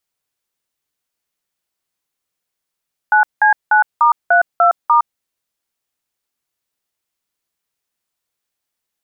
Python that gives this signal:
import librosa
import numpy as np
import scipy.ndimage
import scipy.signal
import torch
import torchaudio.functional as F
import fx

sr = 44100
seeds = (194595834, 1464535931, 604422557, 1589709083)

y = fx.dtmf(sr, digits='9C9*32*', tone_ms=112, gap_ms=184, level_db=-10.5)